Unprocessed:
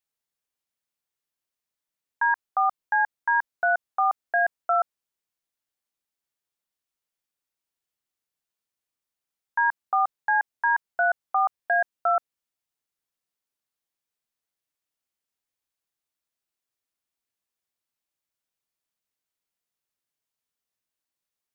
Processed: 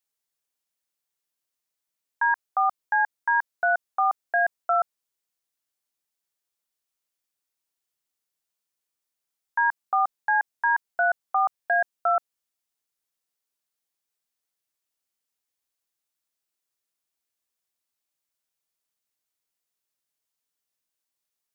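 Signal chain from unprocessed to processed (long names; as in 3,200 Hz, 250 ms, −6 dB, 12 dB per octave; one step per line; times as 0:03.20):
bass and treble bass −3 dB, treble +4 dB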